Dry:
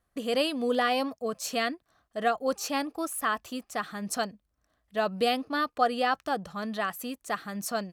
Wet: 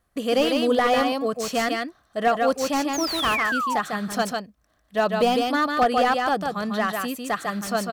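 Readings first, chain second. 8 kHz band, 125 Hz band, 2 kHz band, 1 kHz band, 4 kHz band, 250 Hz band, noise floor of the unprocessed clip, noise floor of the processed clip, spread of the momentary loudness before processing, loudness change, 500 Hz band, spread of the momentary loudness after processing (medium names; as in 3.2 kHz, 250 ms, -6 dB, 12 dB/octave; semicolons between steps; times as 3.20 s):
+4.0 dB, +7.5 dB, +7.0 dB, +7.0 dB, +6.0 dB, +7.5 dB, -77 dBFS, -66 dBFS, 9 LU, +6.5 dB, +7.0 dB, 7 LU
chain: delay 149 ms -4.5 dB; painted sound fall, 2.93–3.80 s, 790–7000 Hz -31 dBFS; slew-rate limiter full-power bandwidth 93 Hz; trim +6 dB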